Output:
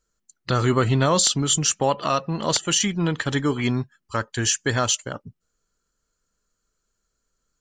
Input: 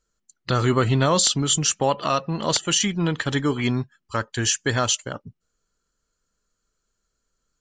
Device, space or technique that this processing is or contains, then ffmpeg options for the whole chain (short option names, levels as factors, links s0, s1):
exciter from parts: -filter_complex "[0:a]asplit=2[s0][s1];[s1]highpass=2500,asoftclip=type=tanh:threshold=0.158,highpass=3200,volume=0.224[s2];[s0][s2]amix=inputs=2:normalize=0"